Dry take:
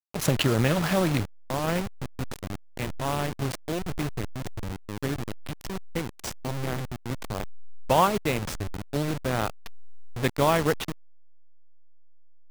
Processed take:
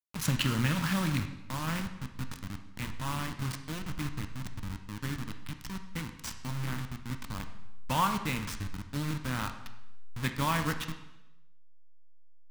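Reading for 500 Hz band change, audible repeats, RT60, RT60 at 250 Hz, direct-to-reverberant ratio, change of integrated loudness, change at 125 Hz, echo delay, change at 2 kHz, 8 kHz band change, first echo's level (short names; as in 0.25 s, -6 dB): -16.0 dB, none, 0.90 s, 0.90 s, 6.5 dB, -6.0 dB, -4.0 dB, none, -3.5 dB, -4.0 dB, none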